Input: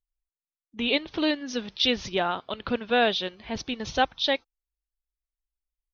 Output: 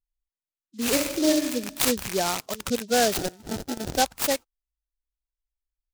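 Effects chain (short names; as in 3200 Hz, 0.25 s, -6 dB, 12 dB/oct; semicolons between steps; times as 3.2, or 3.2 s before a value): rattling part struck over -45 dBFS, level -20 dBFS; spectral gate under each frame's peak -15 dB strong; 0.92–1.51 reverb throw, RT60 0.9 s, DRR 1 dB; 3.17–3.96 sample-rate reducer 1100 Hz, jitter 0%; noise-modulated delay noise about 4800 Hz, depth 0.1 ms; gain +1.5 dB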